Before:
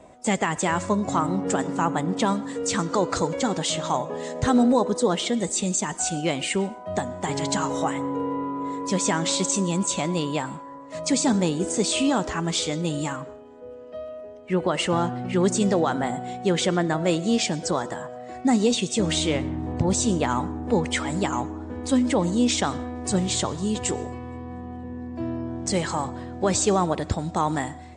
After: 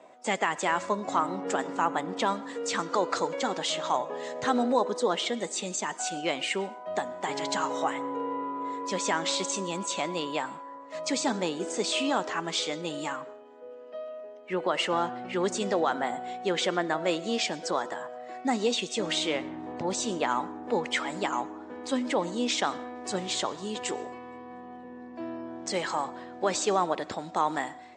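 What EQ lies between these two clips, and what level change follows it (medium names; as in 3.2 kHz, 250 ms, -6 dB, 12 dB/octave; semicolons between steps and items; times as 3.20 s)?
high-pass 230 Hz 12 dB/octave; distance through air 89 m; bass shelf 340 Hz -11 dB; 0.0 dB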